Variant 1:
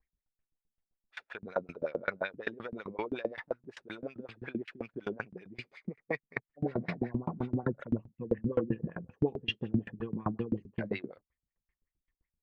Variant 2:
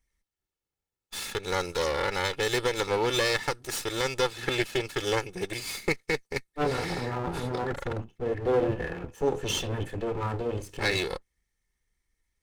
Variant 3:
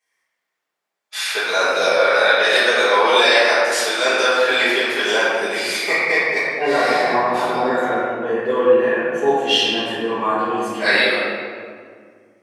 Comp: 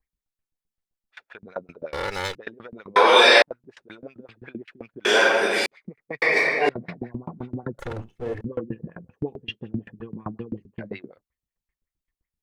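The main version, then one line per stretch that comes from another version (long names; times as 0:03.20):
1
0:01.93–0:02.35: punch in from 2
0:02.96–0:03.42: punch in from 3
0:05.05–0:05.66: punch in from 3
0:06.22–0:06.69: punch in from 3
0:07.79–0:08.41: punch in from 2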